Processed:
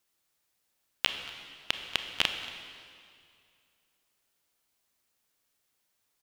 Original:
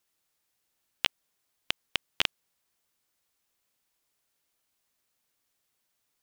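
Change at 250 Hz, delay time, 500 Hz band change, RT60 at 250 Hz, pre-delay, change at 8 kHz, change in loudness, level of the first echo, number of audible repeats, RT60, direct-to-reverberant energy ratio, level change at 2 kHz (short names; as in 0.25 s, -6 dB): +1.0 dB, 0.23 s, +1.0 dB, 2.3 s, 25 ms, +1.0 dB, 0.0 dB, -20.0 dB, 1, 2.3 s, 6.0 dB, +1.0 dB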